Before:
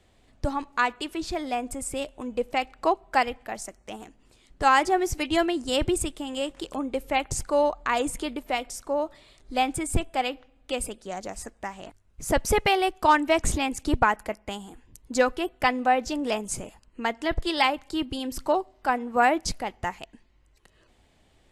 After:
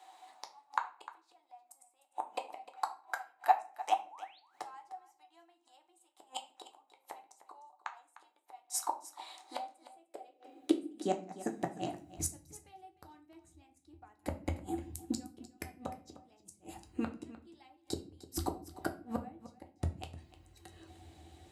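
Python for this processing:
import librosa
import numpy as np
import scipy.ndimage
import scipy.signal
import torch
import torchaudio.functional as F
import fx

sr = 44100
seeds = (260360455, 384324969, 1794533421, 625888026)

y = fx.high_shelf(x, sr, hz=5200.0, db=9.0)
y = fx.small_body(y, sr, hz=(330.0, 750.0, 3900.0), ring_ms=55, db=15)
y = fx.spec_paint(y, sr, seeds[0], shape='rise', start_s=3.99, length_s=0.41, low_hz=360.0, high_hz=4800.0, level_db=-18.0)
y = fx.gate_flip(y, sr, shuts_db=-18.0, range_db=-42)
y = fx.filter_sweep_highpass(y, sr, from_hz=910.0, to_hz=81.0, start_s=9.5, end_s=12.29, q=4.6)
y = y + 10.0 ** (-16.0 / 20.0) * np.pad(y, (int(303 * sr / 1000.0), 0))[:len(y)]
y = fx.room_shoebox(y, sr, seeds[1], volume_m3=30.0, walls='mixed', distance_m=0.31)
y = y * librosa.db_to_amplitude(-3.0)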